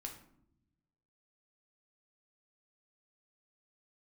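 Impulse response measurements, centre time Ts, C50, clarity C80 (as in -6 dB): 19 ms, 8.5 dB, 12.0 dB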